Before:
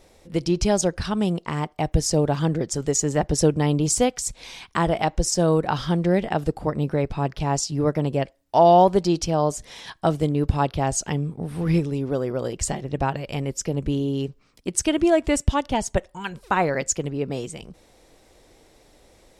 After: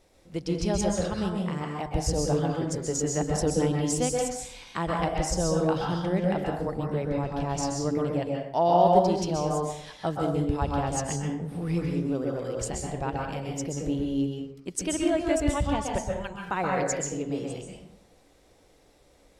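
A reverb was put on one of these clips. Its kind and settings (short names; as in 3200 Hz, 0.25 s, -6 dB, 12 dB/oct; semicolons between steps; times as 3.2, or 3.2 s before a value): plate-style reverb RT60 0.74 s, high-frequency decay 0.6×, pre-delay 0.115 s, DRR -1 dB; gain -8.5 dB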